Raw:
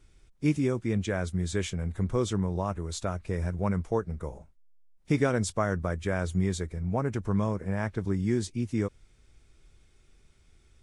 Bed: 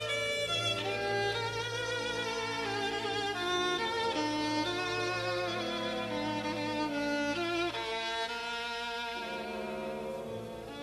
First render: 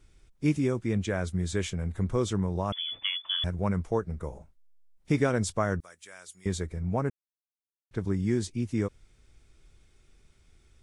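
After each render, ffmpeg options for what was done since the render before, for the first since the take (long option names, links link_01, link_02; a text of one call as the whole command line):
ffmpeg -i in.wav -filter_complex "[0:a]asettb=1/sr,asplit=3[link_01][link_02][link_03];[link_01]atrim=end=2.724[link_04];[link_02]atrim=start=2.72:end=3.44,asetpts=PTS-STARTPTS,afade=type=in:duration=0.004:curve=qsin,afade=type=out:start_time=0.716:duration=0.004:curve=qsin,lowpass=frequency=3000:width_type=q:width=0.5098,lowpass=frequency=3000:width_type=q:width=0.6013,lowpass=frequency=3000:width_type=q:width=0.9,lowpass=frequency=3000:width_type=q:width=2.563,afreqshift=-3500[link_05];[link_03]atrim=start=3.436[link_06];[link_04][link_05]acrossfade=duration=0.004:curve1=hsin:curve2=qsin[link_07];[link_07][link_06]acrossfade=duration=0.004:curve1=qsin:curve2=hsin,asettb=1/sr,asplit=3[link_08][link_09][link_10];[link_08]atrim=end=5.804[link_11];[link_09]atrim=start=5.8:end=6.46,asetpts=PTS-STARTPTS,afade=type=in:duration=0.004:curve=qsin,afade=type=out:start_time=0.656:duration=0.004:curve=qsin,aderivative[link_12];[link_10]atrim=start=6.456[link_13];[link_11][link_12]acrossfade=duration=0.004:curve1=hsin:curve2=qsin[link_14];[link_14][link_13]acrossfade=duration=0.004:curve1=qsin:curve2=hsin,asplit=3[link_15][link_16][link_17];[link_15]atrim=end=7.1,asetpts=PTS-STARTPTS,afade=type=out:start_time=7.096:duration=0.004:curve=hsin[link_18];[link_16]atrim=start=7.1:end=7.91,asetpts=PTS-STARTPTS,volume=0[link_19];[link_17]atrim=start=7.91,asetpts=PTS-STARTPTS,afade=type=in:duration=0.004:curve=hsin[link_20];[link_18][link_19][link_20]concat=n=3:v=0:a=1" out.wav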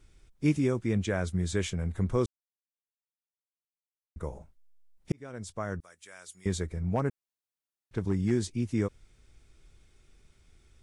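ffmpeg -i in.wav -filter_complex "[0:a]asettb=1/sr,asplit=3[link_01][link_02][link_03];[link_01]atrim=end=6.954[link_04];[link_02]atrim=start=6.95:end=8.31,asetpts=PTS-STARTPTS,afade=type=in:duration=0.004:curve=qsin,afade=type=out:start_time=1.356:duration=0.004:curve=qsin,asoftclip=type=hard:threshold=-19dB[link_05];[link_03]atrim=start=8.306[link_06];[link_04][link_05]acrossfade=duration=0.004:curve1=hsin:curve2=qsin[link_07];[link_07][link_06]acrossfade=duration=0.004:curve1=qsin:curve2=hsin,asplit=4[link_08][link_09][link_10][link_11];[link_08]atrim=end=2.26,asetpts=PTS-STARTPTS,afade=type=out:start_time=2.256:duration=0.004:curve=hsin[link_12];[link_09]atrim=start=2.26:end=4.16,asetpts=PTS-STARTPTS,volume=0[link_13];[link_10]atrim=start=4.16:end=5.12,asetpts=PTS-STARTPTS,afade=type=in:duration=0.004:curve=hsin,afade=type=out:start_time=0.956:duration=0.004:curve=hsin[link_14];[link_11]atrim=start=5.12,asetpts=PTS-STARTPTS,afade=type=in:duration=1.2[link_15];[link_12][link_13][link_14][link_15]concat=n=4:v=0:a=1" out.wav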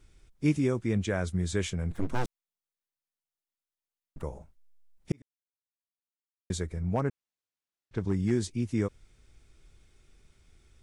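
ffmpeg -i in.wav -filter_complex "[0:a]asettb=1/sr,asplit=3[link_01][link_02][link_03];[link_01]atrim=end=1.914[link_04];[link_02]atrim=start=1.91:end=4.23,asetpts=PTS-STARTPTS,afade=type=in:duration=0.004:curve=qsin,afade=type=out:start_time=2.316:duration=0.004:curve=qsin,aeval=exprs='abs(val(0))':channel_layout=same[link_05];[link_03]atrim=start=4.226[link_06];[link_04][link_05]acrossfade=duration=0.004:curve1=hsin:curve2=qsin[link_07];[link_07][link_06]acrossfade=duration=0.004:curve1=qsin:curve2=hsin,asettb=1/sr,asplit=3[link_08][link_09][link_10];[link_08]atrim=end=7.014[link_11];[link_09]atrim=start=7.01:end=8.09,asetpts=PTS-STARTPTS,afade=type=in:duration=0.004:curve=qsin,afade=type=out:start_time=1.076:duration=0.004:curve=qsin,lowpass=7100[link_12];[link_10]atrim=start=8.086[link_13];[link_11][link_12]acrossfade=duration=0.004:curve1=hsin:curve2=qsin[link_14];[link_14][link_13]acrossfade=duration=0.004:curve1=qsin:curve2=hsin,asplit=3[link_15][link_16][link_17];[link_15]atrim=end=5.22,asetpts=PTS-STARTPTS,afade=type=out:start_time=5.216:duration=0.004:curve=hsin[link_18];[link_16]atrim=start=5.22:end=6.5,asetpts=PTS-STARTPTS,volume=0[link_19];[link_17]atrim=start=6.5,asetpts=PTS-STARTPTS,afade=type=in:duration=0.004:curve=hsin[link_20];[link_18][link_19][link_20]concat=n=3:v=0:a=1" out.wav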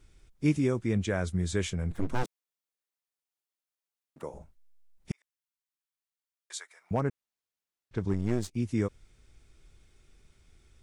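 ffmpeg -i in.wav -filter_complex "[0:a]asettb=1/sr,asplit=3[link_01][link_02][link_03];[link_01]atrim=end=2.234[link_04];[link_02]atrim=start=2.23:end=4.34,asetpts=PTS-STARTPTS,afade=type=in:duration=0.004:curve=qsin,afade=type=out:start_time=2.106:duration=0.004:curve=qsin,highpass=240[link_05];[link_03]atrim=start=4.336[link_06];[link_04][link_05]acrossfade=duration=0.004:curve1=hsin:curve2=qsin[link_07];[link_07][link_06]acrossfade=duration=0.004:curve1=qsin:curve2=hsin,asettb=1/sr,asplit=3[link_08][link_09][link_10];[link_08]atrim=end=5.114[link_11];[link_09]atrim=start=5.11:end=6.91,asetpts=PTS-STARTPTS,afade=type=in:duration=0.004:curve=qsin,afade=type=out:start_time=1.796:duration=0.004:curve=qsin,highpass=frequency=910:width=0.5412,highpass=frequency=910:width=1.3066[link_12];[link_10]atrim=start=6.906[link_13];[link_11][link_12]acrossfade=duration=0.004:curve1=hsin:curve2=qsin[link_14];[link_14][link_13]acrossfade=duration=0.004:curve1=qsin:curve2=hsin,asettb=1/sr,asplit=3[link_15][link_16][link_17];[link_15]atrim=end=8.134[link_18];[link_16]atrim=start=8.13:end=8.56,asetpts=PTS-STARTPTS,afade=type=in:duration=0.004:curve=qsin,afade=type=out:start_time=0.426:duration=0.004:curve=qsin,aeval=exprs='if(lt(val(0),0),0.251*val(0),val(0))':channel_layout=same[link_19];[link_17]atrim=start=8.556[link_20];[link_18][link_19]acrossfade=duration=0.004:curve1=hsin:curve2=qsin[link_21];[link_21][link_20]acrossfade=duration=0.004:curve1=qsin:curve2=hsin" out.wav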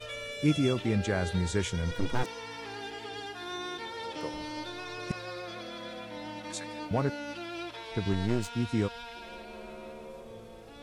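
ffmpeg -i in.wav -i bed.wav -filter_complex "[1:a]volume=-6.5dB[link_01];[0:a][link_01]amix=inputs=2:normalize=0" out.wav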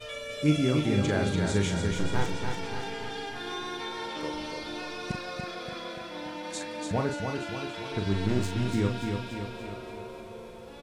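ffmpeg -i in.wav -filter_complex "[0:a]asplit=2[link_01][link_02];[link_02]adelay=40,volume=-6dB[link_03];[link_01][link_03]amix=inputs=2:normalize=0,aecho=1:1:289|578|867|1156|1445|1734|2023:0.562|0.304|0.164|0.0885|0.0478|0.0258|0.0139" out.wav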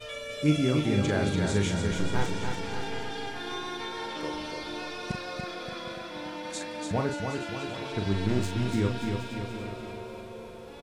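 ffmpeg -i in.wav -af "aecho=1:1:768:0.211" out.wav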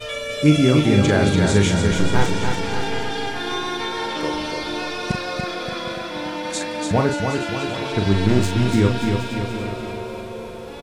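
ffmpeg -i in.wav -af "volume=10dB,alimiter=limit=-3dB:level=0:latency=1" out.wav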